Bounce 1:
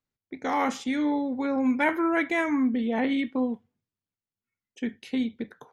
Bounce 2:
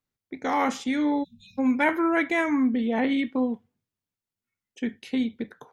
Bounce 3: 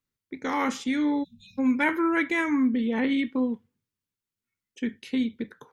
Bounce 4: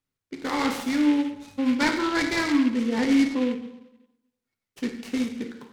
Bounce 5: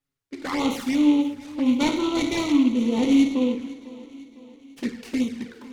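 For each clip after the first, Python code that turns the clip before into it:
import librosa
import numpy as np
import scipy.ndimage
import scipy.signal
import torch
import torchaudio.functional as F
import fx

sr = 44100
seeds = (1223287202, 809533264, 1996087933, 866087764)

y1 = fx.spec_erase(x, sr, start_s=1.24, length_s=0.34, low_hz=220.0, high_hz=2400.0)
y1 = y1 * 10.0 ** (1.5 / 20.0)
y2 = fx.peak_eq(y1, sr, hz=700.0, db=-11.5, octaves=0.44)
y3 = fx.rev_plate(y2, sr, seeds[0], rt60_s=0.94, hf_ratio=0.8, predelay_ms=0, drr_db=4.0)
y3 = fx.noise_mod_delay(y3, sr, seeds[1], noise_hz=2200.0, depth_ms=0.051)
y4 = fx.env_flanger(y3, sr, rest_ms=7.2, full_db=-22.0)
y4 = fx.echo_feedback(y4, sr, ms=502, feedback_pct=53, wet_db=-19)
y4 = y4 * 10.0 ** (3.0 / 20.0)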